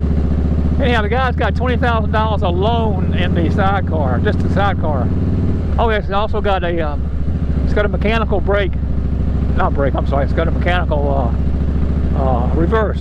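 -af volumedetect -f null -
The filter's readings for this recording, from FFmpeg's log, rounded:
mean_volume: -14.7 dB
max_volume: -2.8 dB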